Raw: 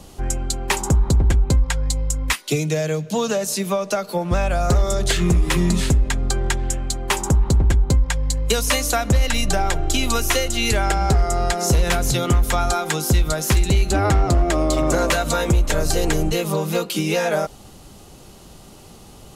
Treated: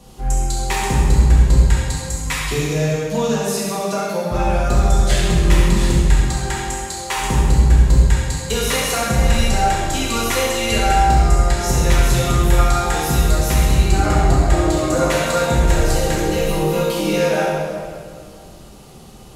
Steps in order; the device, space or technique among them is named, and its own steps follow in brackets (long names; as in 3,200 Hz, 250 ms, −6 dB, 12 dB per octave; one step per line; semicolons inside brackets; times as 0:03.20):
0:06.16–0:07.16: high-pass filter 130 Hz → 490 Hz 12 dB per octave
tunnel (flutter between parallel walls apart 11.4 metres, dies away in 0.42 s; convolution reverb RT60 2.1 s, pre-delay 3 ms, DRR −6.5 dB)
level −6 dB